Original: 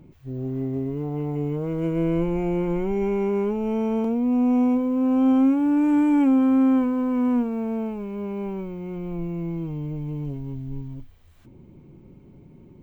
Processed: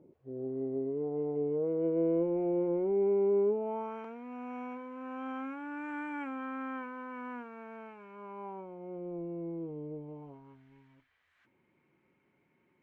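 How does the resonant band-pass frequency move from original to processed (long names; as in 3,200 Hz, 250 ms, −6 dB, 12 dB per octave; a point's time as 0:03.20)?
resonant band-pass, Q 2.5
0:03.52 470 Hz
0:04.00 1,600 Hz
0:07.99 1,600 Hz
0:09.08 480 Hz
0:09.97 480 Hz
0:10.67 1,800 Hz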